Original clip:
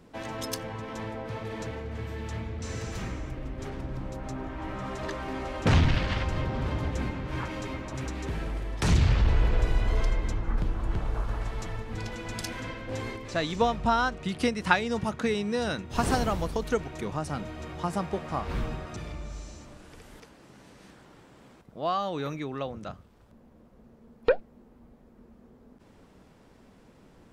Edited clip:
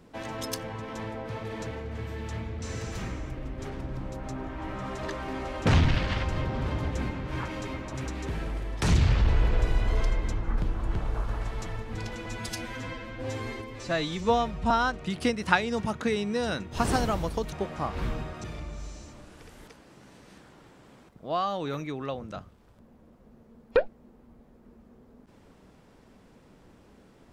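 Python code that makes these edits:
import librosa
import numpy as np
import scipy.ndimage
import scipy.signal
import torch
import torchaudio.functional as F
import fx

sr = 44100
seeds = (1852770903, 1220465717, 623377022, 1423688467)

y = fx.edit(x, sr, fx.stretch_span(start_s=12.26, length_s=1.63, factor=1.5),
    fx.cut(start_s=16.71, length_s=1.34), tone=tone)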